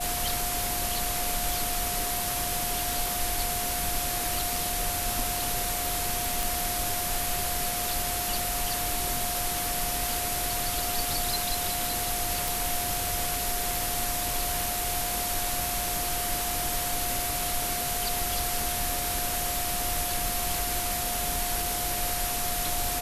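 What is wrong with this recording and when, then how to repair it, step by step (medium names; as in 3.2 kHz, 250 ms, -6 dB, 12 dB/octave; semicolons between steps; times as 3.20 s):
whine 710 Hz -34 dBFS
6.43 s: pop
12.48 s: pop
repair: de-click; band-stop 710 Hz, Q 30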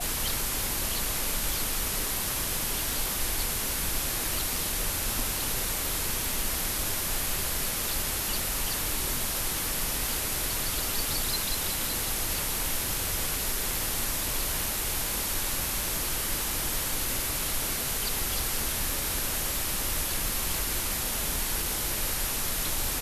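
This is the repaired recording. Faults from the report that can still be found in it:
nothing left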